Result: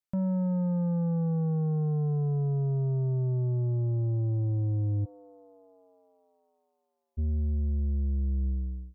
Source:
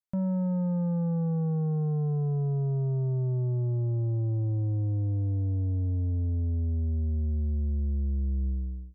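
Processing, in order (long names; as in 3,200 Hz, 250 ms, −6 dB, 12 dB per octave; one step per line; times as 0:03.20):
0:05.04–0:07.17: high-pass filter 440 Hz → 1,200 Hz 24 dB per octave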